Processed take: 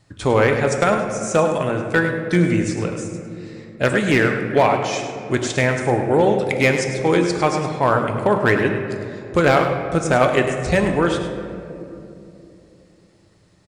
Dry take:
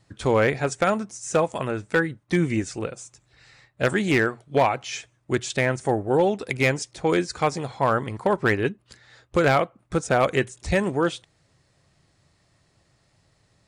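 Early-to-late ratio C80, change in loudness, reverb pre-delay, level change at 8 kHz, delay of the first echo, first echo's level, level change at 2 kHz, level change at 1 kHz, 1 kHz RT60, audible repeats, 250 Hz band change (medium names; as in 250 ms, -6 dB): 5.5 dB, +5.0 dB, 3 ms, +4.5 dB, 103 ms, -10.0 dB, +5.0 dB, +5.0 dB, 2.4 s, 1, +5.5 dB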